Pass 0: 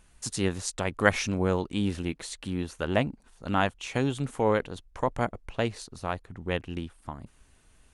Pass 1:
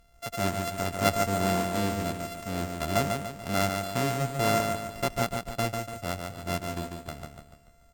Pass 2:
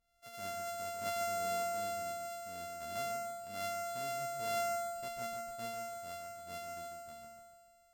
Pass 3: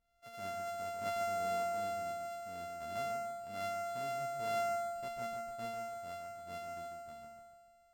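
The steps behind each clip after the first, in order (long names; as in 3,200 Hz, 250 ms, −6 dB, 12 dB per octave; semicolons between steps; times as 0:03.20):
samples sorted by size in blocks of 64 samples; harmonic generator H 5 −24 dB, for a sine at −4.5 dBFS; on a send: repeating echo 145 ms, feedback 45%, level −5 dB; on the sum: level −3.5 dB
tuned comb filter 230 Hz, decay 1.2 s, mix 90%; level −5.5 dB
high-shelf EQ 4,000 Hz −9.5 dB; level +1 dB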